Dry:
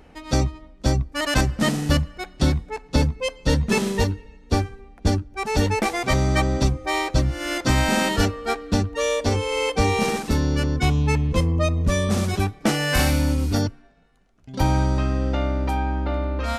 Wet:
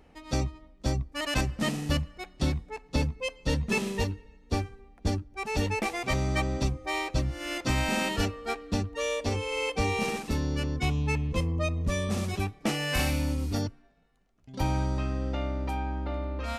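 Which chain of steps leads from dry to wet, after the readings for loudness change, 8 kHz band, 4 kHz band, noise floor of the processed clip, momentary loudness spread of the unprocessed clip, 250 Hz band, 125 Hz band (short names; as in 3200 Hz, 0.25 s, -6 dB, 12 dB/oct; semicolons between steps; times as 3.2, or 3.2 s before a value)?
-7.5 dB, -8.0 dB, -6.5 dB, -58 dBFS, 5 LU, -8.0 dB, -8.0 dB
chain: dynamic EQ 2600 Hz, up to +6 dB, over -44 dBFS, Q 4.3; notch 1500 Hz, Q 15; gain -8 dB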